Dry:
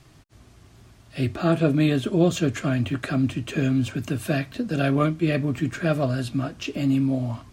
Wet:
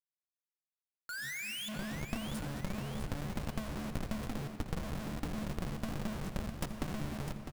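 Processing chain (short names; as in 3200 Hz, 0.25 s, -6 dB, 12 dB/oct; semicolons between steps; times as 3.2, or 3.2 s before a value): repeated pitch sweeps +12 st, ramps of 0.175 s; inverse Chebyshev band-stop 640–2500 Hz, stop band 60 dB; notches 50/100/150/200/250/300/350/400 Hz; metallic resonator 69 Hz, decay 0.41 s, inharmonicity 0.008; painted sound rise, 1.09–1.69, 1400–3600 Hz -27 dBFS; Schmitt trigger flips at -42 dBFS; power-law curve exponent 3; feedback echo 0.654 s, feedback 42%, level -9 dB; on a send at -9 dB: reverb RT60 3.4 s, pre-delay 54 ms; on the sum: gain +7.5 dB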